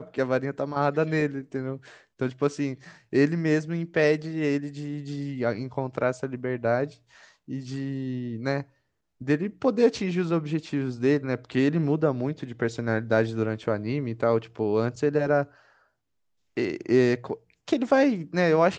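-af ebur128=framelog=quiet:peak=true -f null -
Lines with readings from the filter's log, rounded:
Integrated loudness:
  I:         -26.4 LUFS
  Threshold: -36.8 LUFS
Loudness range:
  LRA:         4.5 LU
  Threshold: -47.2 LUFS
  LRA low:   -30.3 LUFS
  LRA high:  -25.7 LUFS
True peak:
  Peak:       -8.1 dBFS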